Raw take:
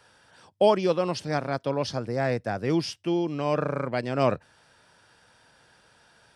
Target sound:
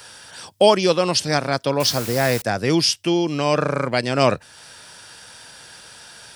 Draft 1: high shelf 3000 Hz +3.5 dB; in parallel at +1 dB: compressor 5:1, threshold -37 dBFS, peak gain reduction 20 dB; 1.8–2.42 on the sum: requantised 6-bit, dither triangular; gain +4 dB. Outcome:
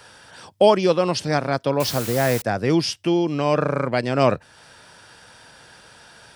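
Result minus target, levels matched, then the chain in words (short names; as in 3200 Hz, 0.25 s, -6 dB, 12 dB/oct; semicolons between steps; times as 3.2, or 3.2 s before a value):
4000 Hz band -5.5 dB
high shelf 3000 Hz +14.5 dB; in parallel at +1 dB: compressor 5:1, threshold -37 dBFS, peak gain reduction 20.5 dB; 1.8–2.42 on the sum: requantised 6-bit, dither triangular; gain +4 dB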